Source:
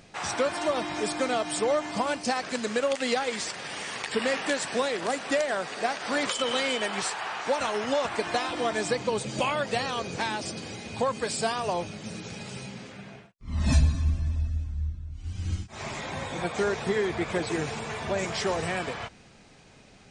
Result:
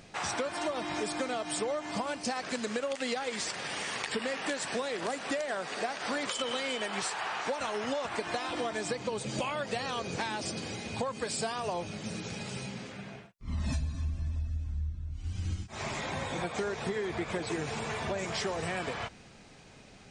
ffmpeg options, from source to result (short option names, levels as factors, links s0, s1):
-filter_complex "[0:a]asettb=1/sr,asplit=3[s0][s1][s2];[s0]atrim=end=5.474[s3];[s1]atrim=start=5.47:end=5.9,asetpts=PTS-STARTPTS,afade=t=in:d=0.004:c=qsin,afade=t=out:st=0.426:d=0.004:c=qsin,highpass=110[s4];[s2]atrim=start=5.896[s5];[s3][s4]acrossfade=d=0.004:c1=hsin:c2=qsin[s6];[s6][s5]acrossfade=d=0.004:c1=qsin:c2=hsin,acompressor=threshold=0.0316:ratio=6"